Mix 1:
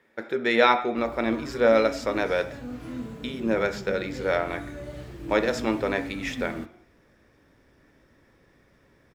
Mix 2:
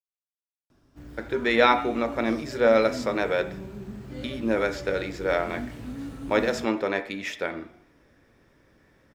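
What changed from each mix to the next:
speech: entry +1.00 s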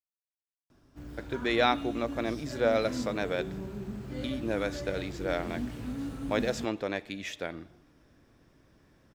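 reverb: off

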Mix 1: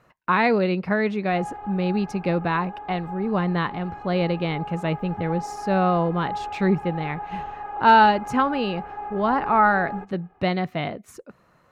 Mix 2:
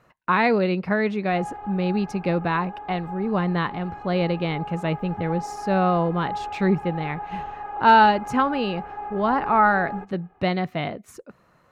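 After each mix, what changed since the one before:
no change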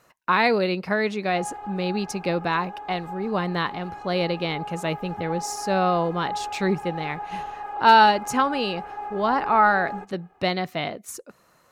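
master: add tone controls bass -6 dB, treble +13 dB

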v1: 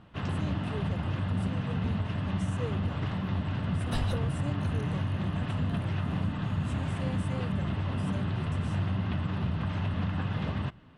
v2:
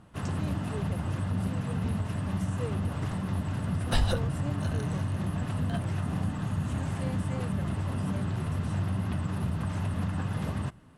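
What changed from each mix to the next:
first sound: remove resonant low-pass 3.4 kHz, resonance Q 1.6; second sound +7.5 dB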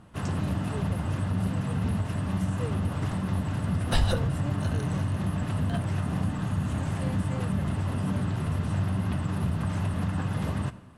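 reverb: on, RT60 1.1 s

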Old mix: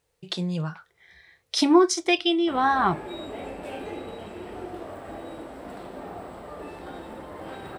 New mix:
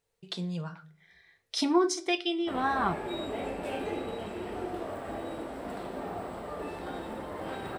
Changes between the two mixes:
speech -10.5 dB; reverb: on, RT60 0.50 s

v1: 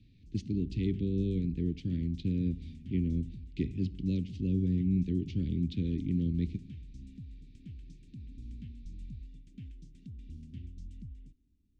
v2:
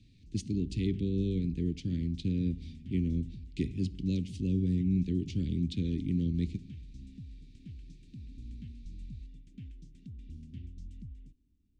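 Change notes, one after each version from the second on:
speech: remove distance through air 160 m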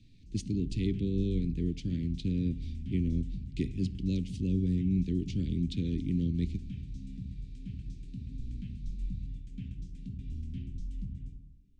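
background: send on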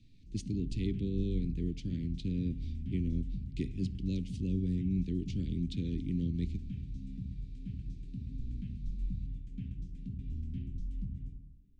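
speech -3.5 dB; background: add treble shelf 2.5 kHz -8.5 dB

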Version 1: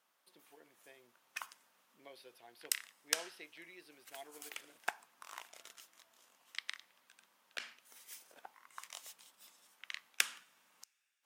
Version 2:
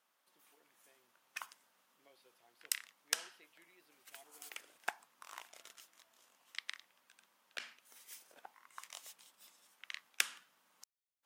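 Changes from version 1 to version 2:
speech -11.5 dB; background: send off

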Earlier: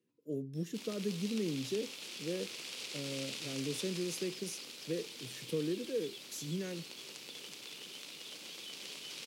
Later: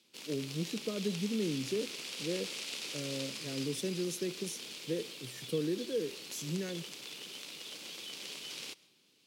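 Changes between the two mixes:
background: entry -0.60 s; reverb: on, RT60 0.50 s

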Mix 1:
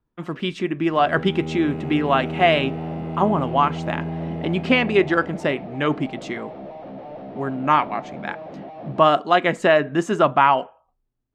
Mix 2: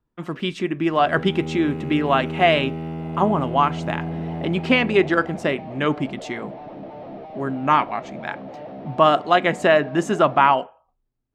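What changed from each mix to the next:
second sound: entry +1.50 s; master: add treble shelf 8.6 kHz +5.5 dB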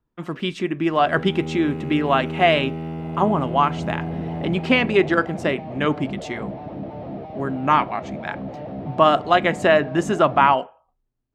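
second sound: remove high-pass 400 Hz 6 dB/octave

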